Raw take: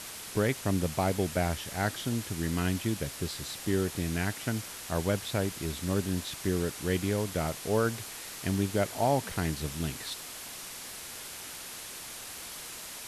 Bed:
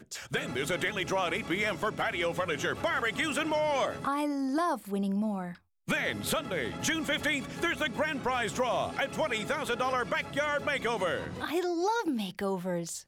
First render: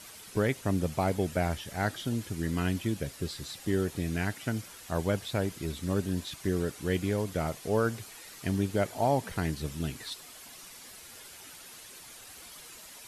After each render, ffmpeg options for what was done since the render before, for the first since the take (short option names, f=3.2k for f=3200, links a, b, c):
-af "afftdn=nr=9:nf=-43"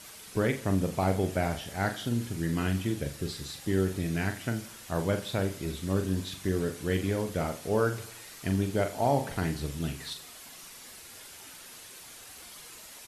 -filter_complex "[0:a]asplit=2[a][b];[b]adelay=42,volume=-7.5dB[c];[a][c]amix=inputs=2:normalize=0,aecho=1:1:85|170|255|340:0.141|0.072|0.0367|0.0187"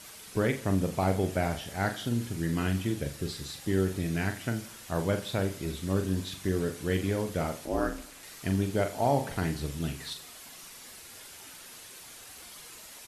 -filter_complex "[0:a]asettb=1/sr,asplit=3[a][b][c];[a]atrim=end=7.654[d];[b]atrim=start=7.65:end=8.23,asetpts=PTS-STARTPTS,afade=t=in:d=0.004:c=qsin,afade=t=out:st=0.576:d=0.004:c=qsin,aeval=exprs='val(0)*sin(2*PI*150*n/s)':c=same[e];[c]atrim=start=8.226[f];[d][e]acrossfade=d=0.004:c1=hsin:c2=qsin[g];[g][f]acrossfade=d=0.004:c1=qsin:c2=hsin"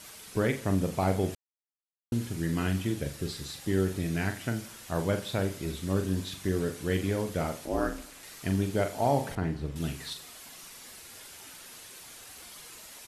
-filter_complex "[0:a]asettb=1/sr,asplit=3[a][b][c];[a]atrim=end=9.354[d];[b]atrim=start=9.35:end=9.76,asetpts=PTS-STARTPTS,afade=t=in:d=0.004:c=qsin,afade=t=out:st=0.406:d=0.004:c=qsin,lowpass=f=1.2k:p=1[e];[c]atrim=start=9.756[f];[d][e]acrossfade=d=0.004:c1=hsin:c2=qsin[g];[g][f]acrossfade=d=0.004:c1=qsin:c2=hsin,asplit=3[h][i][j];[h]atrim=end=1.35,asetpts=PTS-STARTPTS,afade=t=out:st=1.346:d=0.004:c=hsin[k];[i]atrim=start=1.35:end=2.12,asetpts=PTS-STARTPTS,volume=0[l];[j]atrim=start=2.12,asetpts=PTS-STARTPTS,afade=t=in:d=0.004:c=hsin[m];[k][l][m]concat=n=3:v=0:a=1"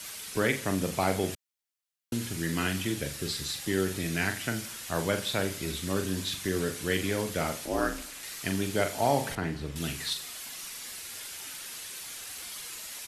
-filter_complex "[0:a]acrossover=split=180|1400[a][b][c];[a]alimiter=level_in=10dB:limit=-24dB:level=0:latency=1,volume=-10dB[d];[c]acontrast=81[e];[d][b][e]amix=inputs=3:normalize=0"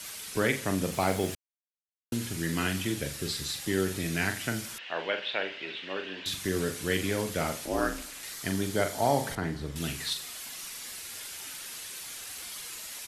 -filter_complex "[0:a]asettb=1/sr,asplit=3[a][b][c];[a]atrim=end=0.924[d];[b]atrim=start=0.92:end=2.15,asetpts=PTS-STARTPTS,afade=t=in:d=0.004:c=qsin,afade=t=out:st=1.226:d=0.004:c=qsin,acrusher=bits=9:dc=4:mix=0:aa=0.000001[e];[c]atrim=start=2.146[f];[d][e]acrossfade=d=0.004:c1=hsin:c2=qsin[g];[g][f]acrossfade=d=0.004:c1=qsin:c2=hsin,asettb=1/sr,asplit=3[h][i][j];[h]atrim=end=4.784[k];[i]atrim=start=4.78:end=6.26,asetpts=PTS-STARTPTS,afade=t=in:d=0.004:c=qsin,afade=t=out:st=1.476:d=0.004:c=qsin,highpass=490,equalizer=f=1.2k:t=q:w=4:g=-5,equalizer=f=1.8k:t=q:w=4:g=4,equalizer=f=2.8k:t=q:w=4:g=9,lowpass=f=3.5k:w=0.5412,lowpass=f=3.5k:w=1.3066[l];[j]atrim=start=6.256[m];[k][l]acrossfade=d=0.004:c1=hsin:c2=qsin[n];[n][m]acrossfade=d=0.004:c1=qsin:c2=hsin,asettb=1/sr,asplit=3[o][p][q];[o]atrim=end=8.324[r];[p]atrim=start=8.32:end=9.75,asetpts=PTS-STARTPTS,afade=t=in:d=0.004:c=qsin,afade=t=out:st=1.426:d=0.004:c=qsin,equalizer=f=2.6k:t=o:w=0.26:g=-7.5[s];[q]atrim=start=9.746[t];[r][s]acrossfade=d=0.004:c1=hsin:c2=qsin[u];[u][t]acrossfade=d=0.004:c1=qsin:c2=hsin"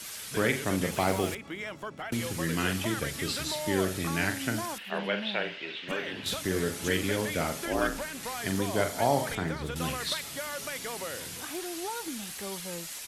-filter_complex "[1:a]volume=-8dB[a];[0:a][a]amix=inputs=2:normalize=0"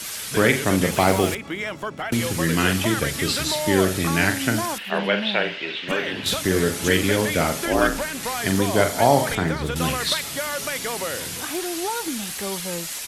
-af "volume=9dB"